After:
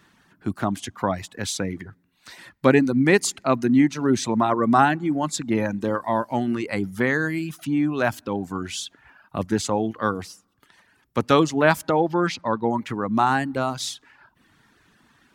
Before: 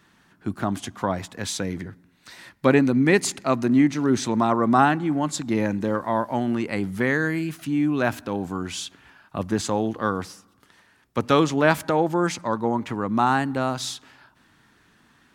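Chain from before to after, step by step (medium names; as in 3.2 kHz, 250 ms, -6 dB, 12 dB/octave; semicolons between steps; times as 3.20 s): 12.00–12.71 s: resonant high shelf 5.8 kHz -8.5 dB, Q 1.5; reverb removal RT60 0.72 s; trim +1.5 dB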